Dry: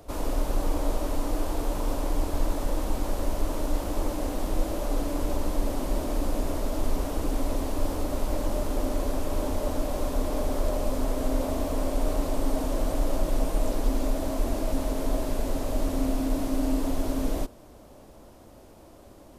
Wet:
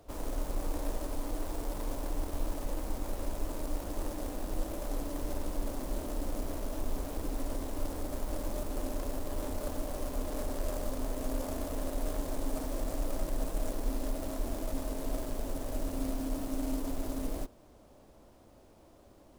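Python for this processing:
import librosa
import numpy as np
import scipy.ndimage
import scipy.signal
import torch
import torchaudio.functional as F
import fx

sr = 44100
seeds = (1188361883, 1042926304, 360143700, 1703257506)

y = fx.tracing_dist(x, sr, depth_ms=0.46)
y = F.gain(torch.from_numpy(y), -8.0).numpy()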